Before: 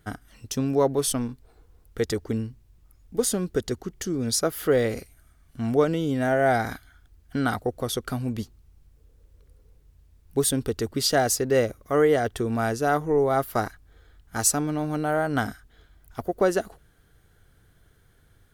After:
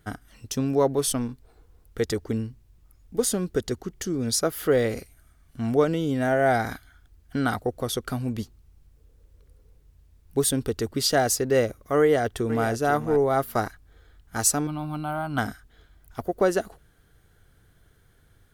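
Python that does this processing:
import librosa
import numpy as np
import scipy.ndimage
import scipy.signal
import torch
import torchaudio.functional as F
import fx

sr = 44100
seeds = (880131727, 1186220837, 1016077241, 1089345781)

y = fx.echo_throw(x, sr, start_s=12.0, length_s=0.67, ms=490, feedback_pct=10, wet_db=-11.0)
y = fx.fixed_phaser(y, sr, hz=1800.0, stages=6, at=(14.67, 15.38))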